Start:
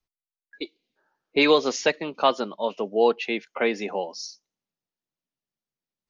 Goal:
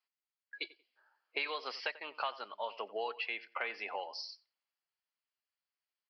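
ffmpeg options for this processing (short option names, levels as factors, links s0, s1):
-filter_complex "[0:a]highpass=1000,bandreject=f=3700:w=5.9,acompressor=threshold=0.0141:ratio=6,asplit=2[s0][s1];[s1]adelay=91,lowpass=f=2300:p=1,volume=0.141,asplit=2[s2][s3];[s3]adelay=91,lowpass=f=2300:p=1,volume=0.26[s4];[s2][s4]amix=inputs=2:normalize=0[s5];[s0][s5]amix=inputs=2:normalize=0,aresample=11025,aresample=44100,volume=1.26"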